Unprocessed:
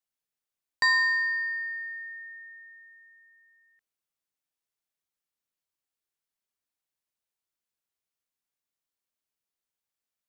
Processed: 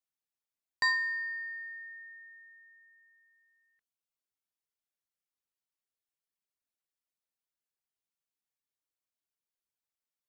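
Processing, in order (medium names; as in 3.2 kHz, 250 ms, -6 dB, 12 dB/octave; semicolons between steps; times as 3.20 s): reverb removal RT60 0.7 s; trim -4.5 dB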